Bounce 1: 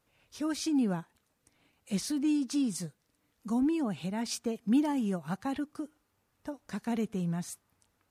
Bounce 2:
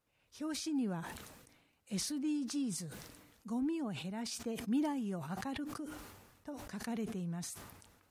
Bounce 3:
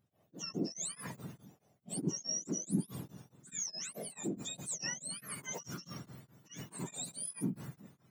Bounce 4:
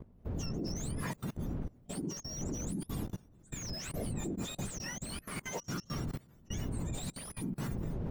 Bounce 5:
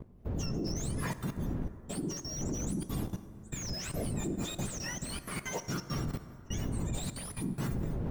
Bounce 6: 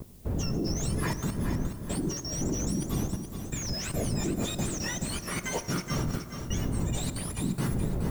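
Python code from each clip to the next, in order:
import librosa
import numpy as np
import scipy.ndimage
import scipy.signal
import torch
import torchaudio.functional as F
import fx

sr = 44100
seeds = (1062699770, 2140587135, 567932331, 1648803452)

y1 = fx.sustainer(x, sr, db_per_s=46.0)
y1 = F.gain(torch.from_numpy(y1), -7.5).numpy()
y2 = fx.octave_mirror(y1, sr, pivot_hz=1300.0)
y2 = fx.high_shelf(y2, sr, hz=9400.0, db=6.0)
y2 = y2 * np.abs(np.cos(np.pi * 4.7 * np.arange(len(y2)) / sr))
y2 = F.gain(torch.from_numpy(y2), 2.5).numpy()
y3 = fx.dmg_wind(y2, sr, seeds[0], corner_hz=170.0, level_db=-42.0)
y3 = fx.level_steps(y3, sr, step_db=24)
y3 = fx.slew_limit(y3, sr, full_power_hz=10.0)
y3 = F.gain(torch.from_numpy(y3), 12.0).numpy()
y4 = fx.rev_plate(y3, sr, seeds[1], rt60_s=3.1, hf_ratio=0.4, predelay_ms=0, drr_db=11.0)
y4 = F.gain(torch.from_numpy(y4), 2.5).numpy()
y5 = fx.dmg_noise_colour(y4, sr, seeds[2], colour='blue', level_db=-63.0)
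y5 = fx.echo_feedback(y5, sr, ms=423, feedback_pct=34, wet_db=-8.0)
y5 = F.gain(torch.from_numpy(y5), 4.5).numpy()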